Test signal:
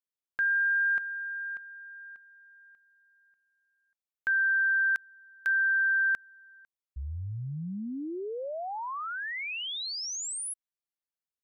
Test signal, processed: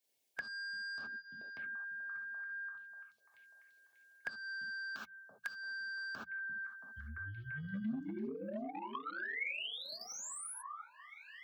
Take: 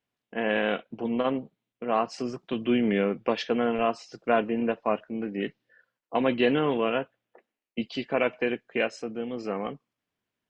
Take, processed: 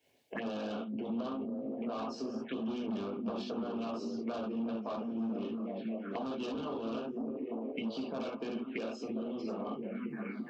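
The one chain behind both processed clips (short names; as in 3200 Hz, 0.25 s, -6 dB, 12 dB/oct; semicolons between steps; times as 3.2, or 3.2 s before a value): high shelf 3600 Hz -2.5 dB; on a send: delay with a stepping band-pass 0.341 s, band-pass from 170 Hz, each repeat 0.7 oct, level -5 dB; on the sum: non-linear reverb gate 0.1 s flat, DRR -3 dB; soft clip -19 dBFS; HPF 78 Hz 24 dB/oct; envelope phaser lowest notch 210 Hz, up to 2000 Hz, full sweep at -25 dBFS; dynamic EQ 140 Hz, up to -7 dB, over -42 dBFS, Q 1.2; harmonic-percussive split harmonic -11 dB; compressor 3:1, threshold -47 dBFS; notches 60/120/180 Hz; small resonant body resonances 220/1200/2200 Hz, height 9 dB; three-band squash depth 40%; gain +5 dB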